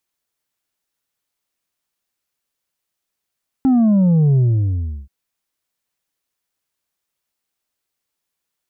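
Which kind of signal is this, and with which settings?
sub drop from 270 Hz, over 1.43 s, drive 4 dB, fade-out 0.71 s, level -11 dB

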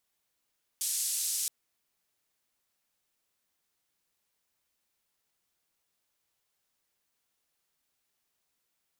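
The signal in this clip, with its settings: noise band 6900–9300 Hz, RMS -32 dBFS 0.67 s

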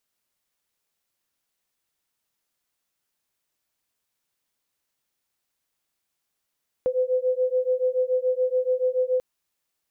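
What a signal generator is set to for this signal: beating tones 505 Hz, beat 7 Hz, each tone -23.5 dBFS 2.34 s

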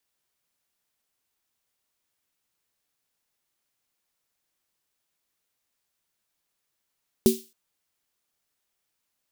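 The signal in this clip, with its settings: snare drum length 0.27 s, tones 230 Hz, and 380 Hz, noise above 3100 Hz, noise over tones -11.5 dB, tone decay 0.23 s, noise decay 0.37 s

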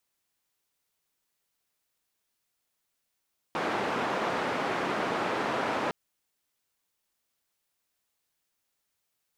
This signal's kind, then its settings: noise band 200–1200 Hz, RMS -30 dBFS 2.36 s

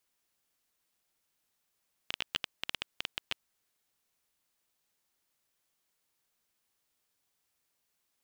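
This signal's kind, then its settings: random clicks 9.6/s -14.5 dBFS 1.74 s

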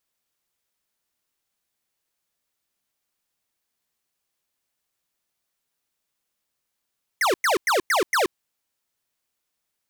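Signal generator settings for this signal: burst of laser zaps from 2200 Hz, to 320 Hz, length 0.13 s square, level -20 dB, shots 5, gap 0.10 s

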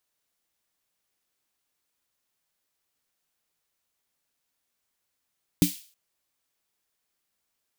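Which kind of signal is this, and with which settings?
snare drum length 0.32 s, tones 180 Hz, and 290 Hz, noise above 2600 Hz, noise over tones -10.5 dB, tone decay 0.14 s, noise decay 0.44 s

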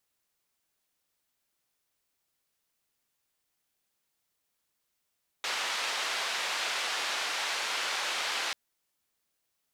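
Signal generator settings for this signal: noise band 660–3900 Hz, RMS -32.5 dBFS 3.09 s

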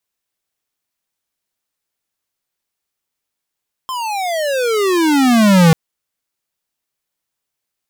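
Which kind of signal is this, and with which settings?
gliding synth tone square, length 1.84 s, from 1060 Hz, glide -33 st, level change +15 dB, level -7.5 dB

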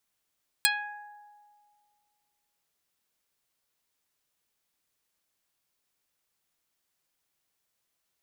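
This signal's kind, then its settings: plucked string G#5, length 2.00 s, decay 2.02 s, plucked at 0.15, dark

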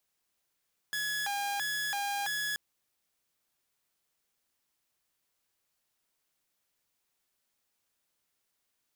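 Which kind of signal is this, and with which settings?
siren hi-lo 807–1690 Hz 1.5/s saw -28.5 dBFS 1.63 s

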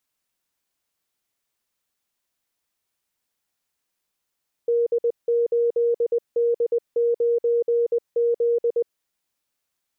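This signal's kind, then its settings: Morse "D8D9Z" 20 wpm 471 Hz -17 dBFS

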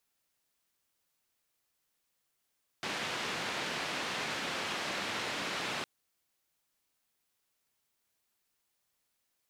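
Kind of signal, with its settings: noise band 140–3100 Hz, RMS -36.5 dBFS 3.01 s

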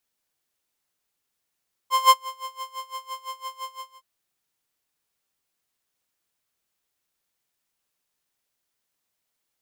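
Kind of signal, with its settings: synth patch with tremolo C6, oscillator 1 square, interval +12 st, sub -21 dB, noise -18.5 dB, filter highpass, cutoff 310 Hz, Q 2, filter envelope 1 oct, filter decay 0.75 s, attack 0.182 s, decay 0.06 s, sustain -23 dB, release 0.31 s, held 1.81 s, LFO 5.9 Hz, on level 21 dB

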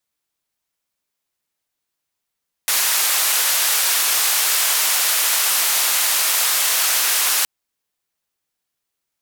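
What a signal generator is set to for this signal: noise band 790–16000 Hz, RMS -18 dBFS 4.77 s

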